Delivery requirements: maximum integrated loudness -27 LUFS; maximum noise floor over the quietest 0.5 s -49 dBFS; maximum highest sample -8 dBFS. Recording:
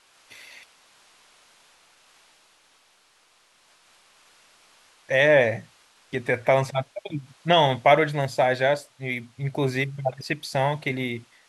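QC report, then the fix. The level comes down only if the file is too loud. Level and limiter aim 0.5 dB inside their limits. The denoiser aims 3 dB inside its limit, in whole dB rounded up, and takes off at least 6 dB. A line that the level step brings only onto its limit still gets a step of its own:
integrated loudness -23.5 LUFS: fail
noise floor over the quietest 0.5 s -61 dBFS: pass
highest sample -6.0 dBFS: fail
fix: trim -4 dB

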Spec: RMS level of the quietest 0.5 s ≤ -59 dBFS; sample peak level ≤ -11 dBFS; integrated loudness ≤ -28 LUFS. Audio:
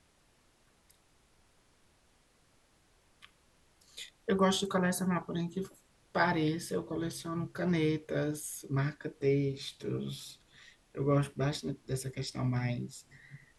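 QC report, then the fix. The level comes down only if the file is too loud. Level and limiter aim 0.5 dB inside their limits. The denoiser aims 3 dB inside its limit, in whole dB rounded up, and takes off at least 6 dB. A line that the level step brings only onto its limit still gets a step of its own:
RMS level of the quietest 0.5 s -68 dBFS: pass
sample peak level -15.0 dBFS: pass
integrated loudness -33.5 LUFS: pass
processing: none needed

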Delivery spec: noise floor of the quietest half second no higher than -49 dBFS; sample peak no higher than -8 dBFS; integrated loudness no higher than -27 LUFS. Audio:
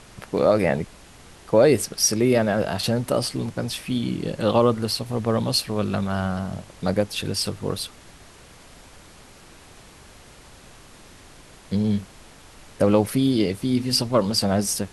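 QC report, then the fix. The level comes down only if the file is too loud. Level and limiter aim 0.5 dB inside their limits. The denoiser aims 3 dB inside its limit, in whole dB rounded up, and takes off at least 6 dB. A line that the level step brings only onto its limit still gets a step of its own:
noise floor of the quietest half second -47 dBFS: fail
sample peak -5.0 dBFS: fail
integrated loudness -22.5 LUFS: fail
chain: trim -5 dB

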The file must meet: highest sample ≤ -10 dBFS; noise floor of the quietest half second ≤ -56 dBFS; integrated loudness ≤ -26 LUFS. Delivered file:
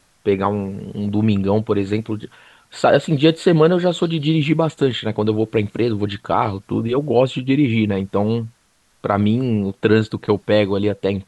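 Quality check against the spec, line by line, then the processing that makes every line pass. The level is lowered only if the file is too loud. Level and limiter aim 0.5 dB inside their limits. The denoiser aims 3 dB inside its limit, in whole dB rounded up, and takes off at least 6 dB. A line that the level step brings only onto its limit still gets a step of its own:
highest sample -2.0 dBFS: fail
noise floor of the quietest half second -60 dBFS: pass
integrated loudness -19.0 LUFS: fail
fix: trim -7.5 dB; peak limiter -10.5 dBFS

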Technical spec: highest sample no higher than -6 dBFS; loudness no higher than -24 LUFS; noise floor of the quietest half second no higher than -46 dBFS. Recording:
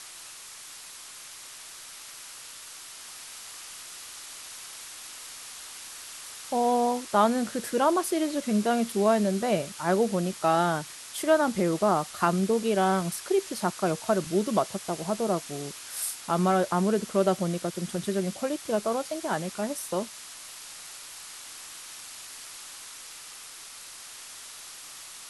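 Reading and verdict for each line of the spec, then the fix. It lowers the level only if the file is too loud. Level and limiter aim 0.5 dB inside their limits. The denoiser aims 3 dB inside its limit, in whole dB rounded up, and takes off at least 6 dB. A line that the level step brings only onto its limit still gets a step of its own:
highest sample -8.5 dBFS: pass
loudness -27.0 LUFS: pass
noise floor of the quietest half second -45 dBFS: fail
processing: noise reduction 6 dB, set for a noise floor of -45 dBFS

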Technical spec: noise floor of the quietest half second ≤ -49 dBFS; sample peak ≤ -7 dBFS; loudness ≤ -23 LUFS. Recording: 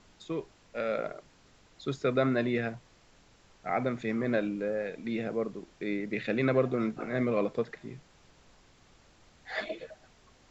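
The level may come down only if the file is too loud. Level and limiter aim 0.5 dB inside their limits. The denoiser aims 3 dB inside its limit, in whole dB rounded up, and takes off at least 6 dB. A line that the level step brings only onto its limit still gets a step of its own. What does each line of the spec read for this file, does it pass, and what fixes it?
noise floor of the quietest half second -61 dBFS: pass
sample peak -13.5 dBFS: pass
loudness -32.0 LUFS: pass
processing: none needed

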